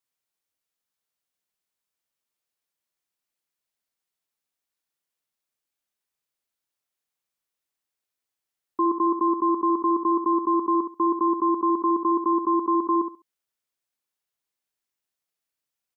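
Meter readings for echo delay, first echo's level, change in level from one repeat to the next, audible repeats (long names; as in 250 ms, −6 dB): 68 ms, −8.5 dB, −14.0 dB, 2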